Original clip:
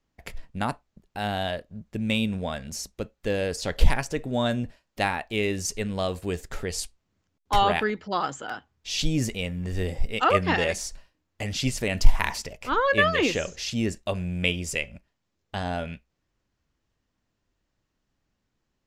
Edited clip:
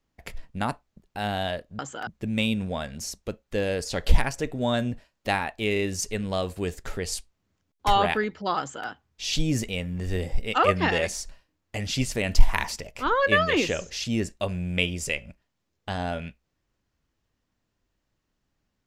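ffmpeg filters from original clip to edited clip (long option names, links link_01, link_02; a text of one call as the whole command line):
ffmpeg -i in.wav -filter_complex "[0:a]asplit=5[link_01][link_02][link_03][link_04][link_05];[link_01]atrim=end=1.792[link_06];[link_02]atrim=start=8.258:end=8.542[link_07];[link_03]atrim=start=1.788:end=5.482[link_08];[link_04]atrim=start=5.448:end=5.482[link_09];[link_05]atrim=start=5.448[link_10];[link_06][link_07]acrossfade=duration=0.004:curve1=hsin:curve2=hsin[link_11];[link_11][link_08]acrossfade=duration=0.004:curve1=hsin:curve2=hsin[link_12];[link_12][link_09]acrossfade=duration=0.004:curve1=hsin:curve2=hsin[link_13];[link_13][link_10]acrossfade=duration=0.004:curve1=hsin:curve2=hsin" out.wav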